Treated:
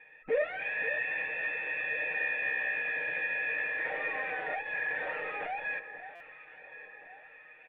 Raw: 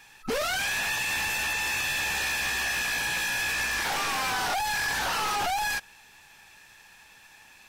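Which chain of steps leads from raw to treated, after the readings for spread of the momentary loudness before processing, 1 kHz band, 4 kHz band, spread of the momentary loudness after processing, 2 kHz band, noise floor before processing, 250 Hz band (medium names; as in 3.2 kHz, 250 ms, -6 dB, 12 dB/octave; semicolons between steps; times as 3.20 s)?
1 LU, -11.5 dB, -23.0 dB, 18 LU, -3.0 dB, -54 dBFS, -11.5 dB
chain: comb 6.5 ms, depth 70%; in parallel at -2 dB: peak limiter -26 dBFS, peak gain reduction 7 dB; on the sum: cascade formant filter e; bass shelf 160 Hz -11.5 dB; on a send: echo whose repeats swap between lows and highs 536 ms, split 1.1 kHz, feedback 69%, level -12 dB; on the sum: buffer glitch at 6.15 s, samples 256, times 8; trim +4.5 dB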